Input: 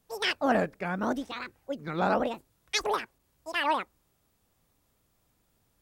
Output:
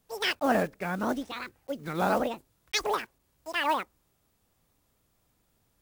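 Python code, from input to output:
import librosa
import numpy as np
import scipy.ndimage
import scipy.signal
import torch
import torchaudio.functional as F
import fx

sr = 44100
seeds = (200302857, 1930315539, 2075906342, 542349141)

y = fx.block_float(x, sr, bits=5)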